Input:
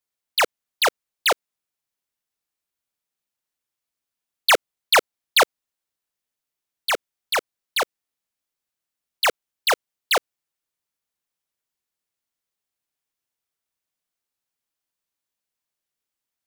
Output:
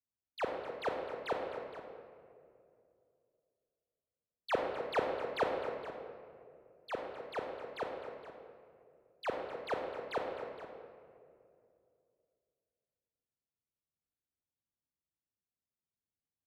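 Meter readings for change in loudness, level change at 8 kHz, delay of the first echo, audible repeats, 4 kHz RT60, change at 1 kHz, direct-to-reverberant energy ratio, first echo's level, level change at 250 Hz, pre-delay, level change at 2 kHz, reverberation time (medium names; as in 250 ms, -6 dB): -17.0 dB, under -30 dB, 257 ms, 2, 1.3 s, -14.5 dB, 0.5 dB, -11.5 dB, -4.5 dB, 28 ms, -20.5 dB, 2.4 s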